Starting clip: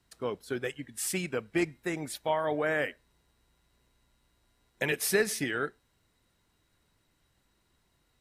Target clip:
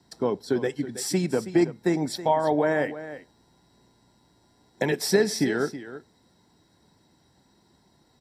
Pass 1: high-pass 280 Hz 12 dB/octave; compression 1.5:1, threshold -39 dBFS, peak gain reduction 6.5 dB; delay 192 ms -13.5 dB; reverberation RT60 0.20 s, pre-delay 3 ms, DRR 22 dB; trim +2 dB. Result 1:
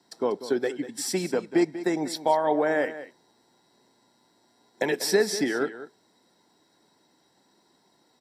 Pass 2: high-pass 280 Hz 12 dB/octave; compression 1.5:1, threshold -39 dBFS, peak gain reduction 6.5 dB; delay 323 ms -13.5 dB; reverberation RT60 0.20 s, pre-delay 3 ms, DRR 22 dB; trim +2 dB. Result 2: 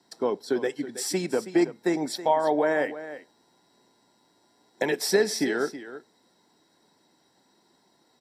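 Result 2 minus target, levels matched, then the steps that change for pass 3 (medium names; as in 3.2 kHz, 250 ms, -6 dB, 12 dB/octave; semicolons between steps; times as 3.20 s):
125 Hz band -8.0 dB
change: high-pass 74 Hz 12 dB/octave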